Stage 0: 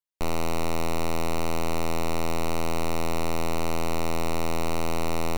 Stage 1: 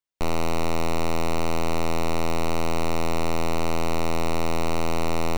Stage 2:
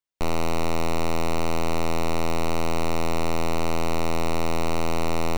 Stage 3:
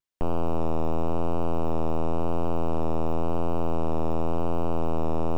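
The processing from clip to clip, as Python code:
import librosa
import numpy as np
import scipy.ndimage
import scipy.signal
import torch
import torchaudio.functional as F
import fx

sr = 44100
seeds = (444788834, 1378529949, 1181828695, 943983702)

y1 = fx.peak_eq(x, sr, hz=14000.0, db=-7.0, octaves=0.91)
y1 = y1 * 10.0 ** (2.5 / 20.0)
y2 = y1
y3 = fx.vibrato(y2, sr, rate_hz=0.94, depth_cents=37.0)
y3 = fx.slew_limit(y3, sr, full_power_hz=67.0)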